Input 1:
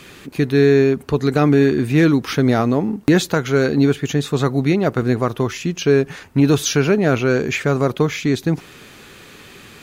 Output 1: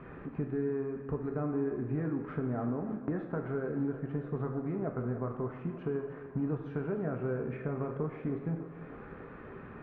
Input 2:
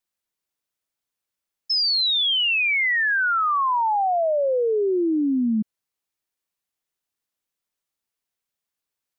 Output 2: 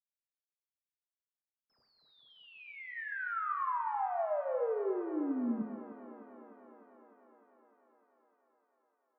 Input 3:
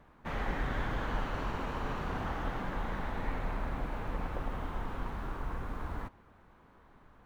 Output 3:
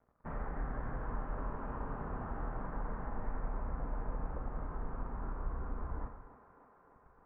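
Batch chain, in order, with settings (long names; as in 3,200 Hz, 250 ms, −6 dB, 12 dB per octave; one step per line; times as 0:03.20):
in parallel at −7.5 dB: hard clipping −15 dBFS
on the sum: downward compressor 3 to 1, threshold −33 dBFS
low-shelf EQ 85 Hz +4.5 dB
dead-zone distortion −52 dBFS
low-pass filter 1,500 Hz 24 dB per octave
feedback echo with a high-pass in the loop 302 ms, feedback 78%, high-pass 210 Hz, level −13.5 dB
reverb whose tail is shaped and stops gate 320 ms falling, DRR 3 dB
level −6 dB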